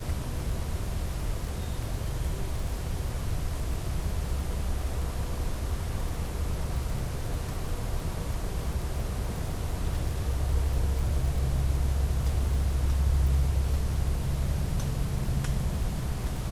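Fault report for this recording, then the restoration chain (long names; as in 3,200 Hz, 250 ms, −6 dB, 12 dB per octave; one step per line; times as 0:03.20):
surface crackle 36 per second −34 dBFS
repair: click removal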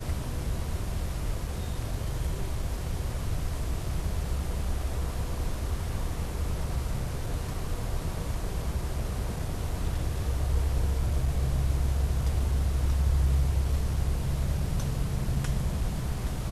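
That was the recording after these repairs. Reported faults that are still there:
none of them is left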